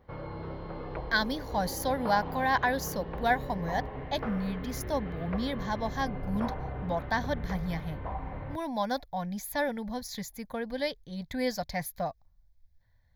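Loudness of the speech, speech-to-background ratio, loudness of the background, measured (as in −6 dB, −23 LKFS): −32.5 LKFS, 6.5 dB, −39.0 LKFS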